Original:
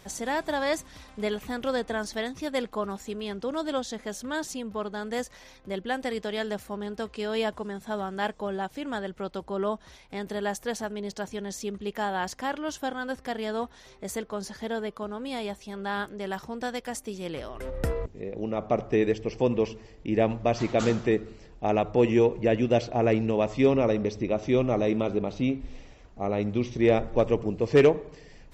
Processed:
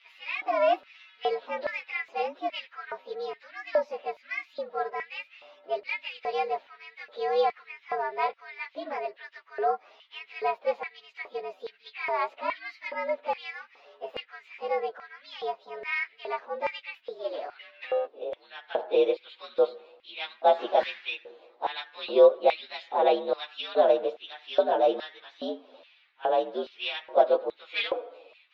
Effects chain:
partials spread apart or drawn together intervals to 116%
elliptic band-pass filter 260–3,900 Hz, stop band 40 dB
auto-filter high-pass square 1.2 Hz 570–2,200 Hz
level +2 dB

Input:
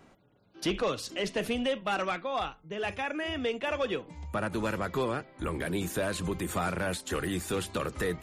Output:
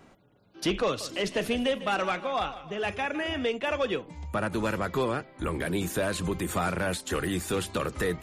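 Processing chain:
0:00.85–0:03.47: feedback echo with a swinging delay time 154 ms, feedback 48%, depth 77 cents, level −14.5 dB
level +2.5 dB

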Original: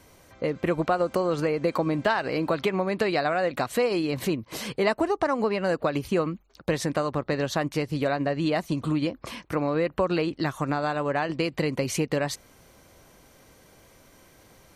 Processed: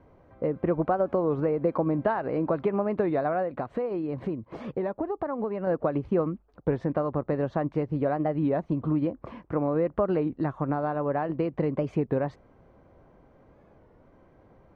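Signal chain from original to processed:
low-pass filter 1,000 Hz 12 dB per octave
0:03.42–0:05.67: downward compressor 3 to 1, threshold −28 dBFS, peak gain reduction 6.5 dB
wow of a warped record 33 1/3 rpm, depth 160 cents

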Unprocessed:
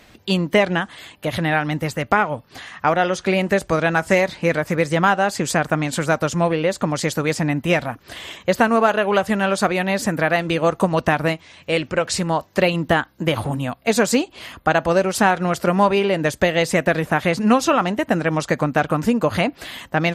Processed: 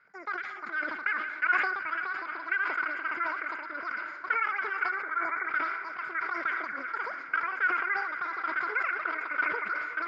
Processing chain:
downward compressor 1.5 to 1, threshold −21 dBFS, peak gain reduction 4.5 dB
formant resonators in series a
feedback delay with all-pass diffusion 903 ms, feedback 63%, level −12 dB
gain on a spectral selection 0:09.80–0:10.92, 1,200–3,000 Hz −13 dB
echo through a band-pass that steps 118 ms, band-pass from 3,500 Hz, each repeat −0.7 octaves, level −9 dB
wrong playback speed 7.5 ips tape played at 15 ips
high-pass filter 100 Hz
level that may fall only so fast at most 43 dB per second

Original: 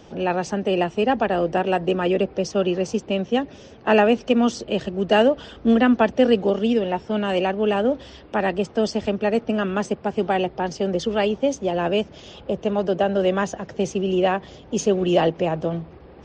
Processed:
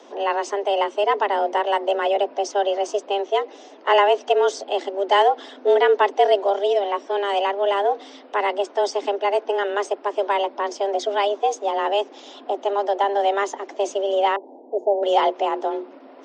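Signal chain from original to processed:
0:14.36–0:15.03: elliptic low-pass filter 690 Hz, stop band 40 dB
frequency shifter +200 Hz

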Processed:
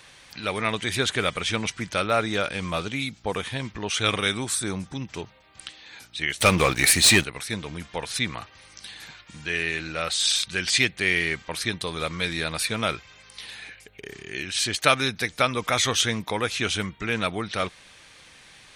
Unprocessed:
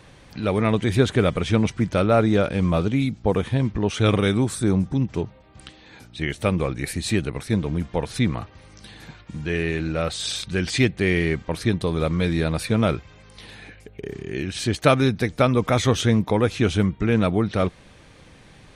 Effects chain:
tilt shelving filter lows −9.5 dB, about 840 Hz
0:06.40–0:07.24: leveller curve on the samples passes 3
level −3 dB

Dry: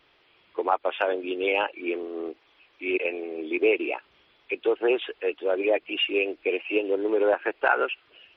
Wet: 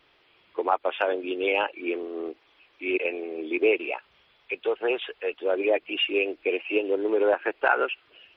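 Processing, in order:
0:03.78–0:05.40: parametric band 310 Hz −8.5 dB 0.68 octaves

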